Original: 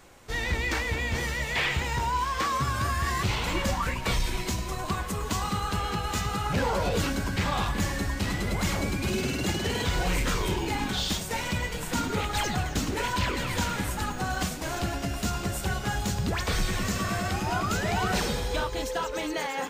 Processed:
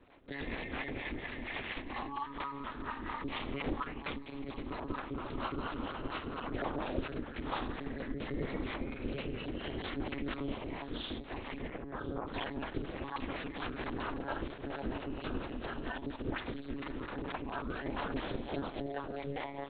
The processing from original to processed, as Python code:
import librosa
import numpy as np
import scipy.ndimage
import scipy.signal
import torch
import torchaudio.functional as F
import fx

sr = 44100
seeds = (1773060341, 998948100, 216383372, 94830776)

y = fx.rider(x, sr, range_db=3, speed_s=2.0)
y = fx.low_shelf(y, sr, hz=260.0, db=8.5)
y = 10.0 ** (-11.5 / 20.0) * np.tanh(y / 10.0 ** (-11.5 / 20.0))
y = fx.peak_eq(y, sr, hz=340.0, db=12.0, octaves=0.34, at=(7.99, 8.64))
y = fx.lpc_monotone(y, sr, seeds[0], pitch_hz=140.0, order=10)
y = fx.lowpass(y, sr, hz=fx.line((11.67, 2500.0), (12.26, 1100.0)), slope=24, at=(11.67, 12.26), fade=0.02)
y = fx.harmonic_tremolo(y, sr, hz=4.3, depth_pct=70, crossover_hz=430.0)
y = scipy.signal.sosfilt(scipy.signal.butter(4, 99.0, 'highpass', fs=sr, output='sos'), y)
y = y + 10.0 ** (-20.0 / 20.0) * np.pad(y, (int(1004 * sr / 1000.0), 0))[:len(y)]
y = y * np.sin(2.0 * np.pi * 140.0 * np.arange(len(y)) / sr)
y = fx.env_flatten(y, sr, amount_pct=70, at=(13.79, 14.19))
y = F.gain(torch.from_numpy(y), -5.0).numpy()